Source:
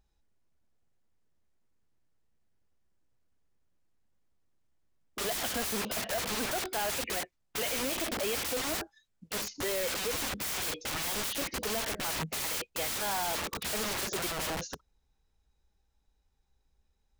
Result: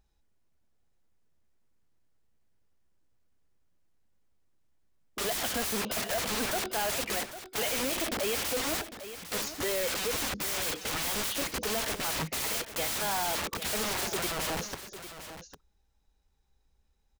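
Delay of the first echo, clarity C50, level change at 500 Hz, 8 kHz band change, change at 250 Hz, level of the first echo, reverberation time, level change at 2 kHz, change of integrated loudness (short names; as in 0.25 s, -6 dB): 0.802 s, none, +2.0 dB, +2.0 dB, +2.0 dB, -12.0 dB, none, +2.0 dB, +1.5 dB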